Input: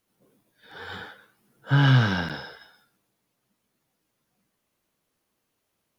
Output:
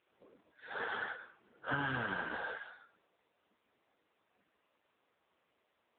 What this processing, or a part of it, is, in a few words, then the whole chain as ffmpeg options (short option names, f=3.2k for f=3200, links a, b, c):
voicemail: -filter_complex "[0:a]asplit=3[a][b][c];[a]afade=t=out:st=1.86:d=0.02[d];[b]lowpass=5.1k,afade=t=in:st=1.86:d=0.02,afade=t=out:st=2.46:d=0.02[e];[c]afade=t=in:st=2.46:d=0.02[f];[d][e][f]amix=inputs=3:normalize=0,highpass=380,lowpass=2.7k,acompressor=threshold=-38dB:ratio=10,volume=7dB" -ar 8000 -c:a libopencore_amrnb -b:a 6700